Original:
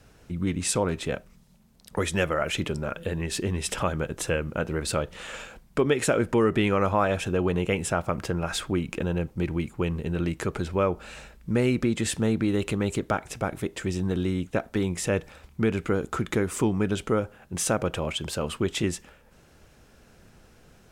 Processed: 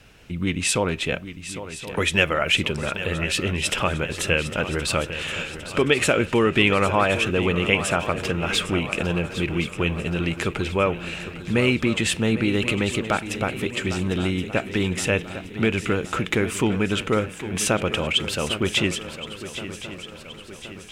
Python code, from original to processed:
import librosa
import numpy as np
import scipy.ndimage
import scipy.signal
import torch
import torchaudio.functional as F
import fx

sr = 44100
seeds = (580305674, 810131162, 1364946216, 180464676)

y = fx.peak_eq(x, sr, hz=2700.0, db=11.0, octaves=1.0)
y = fx.echo_swing(y, sr, ms=1072, ratio=3, feedback_pct=51, wet_db=-12.5)
y = F.gain(torch.from_numpy(y), 2.0).numpy()